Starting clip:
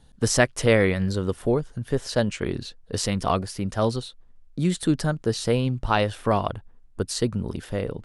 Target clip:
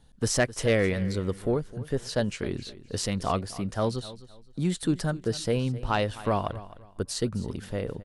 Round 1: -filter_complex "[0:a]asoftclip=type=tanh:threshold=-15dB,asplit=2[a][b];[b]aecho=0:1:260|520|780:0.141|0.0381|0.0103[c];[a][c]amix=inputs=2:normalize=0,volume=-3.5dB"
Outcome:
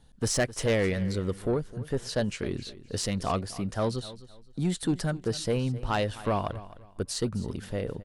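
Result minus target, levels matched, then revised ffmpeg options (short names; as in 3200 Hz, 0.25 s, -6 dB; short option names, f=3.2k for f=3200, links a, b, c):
soft clip: distortion +7 dB
-filter_complex "[0:a]asoftclip=type=tanh:threshold=-9dB,asplit=2[a][b];[b]aecho=0:1:260|520|780:0.141|0.0381|0.0103[c];[a][c]amix=inputs=2:normalize=0,volume=-3.5dB"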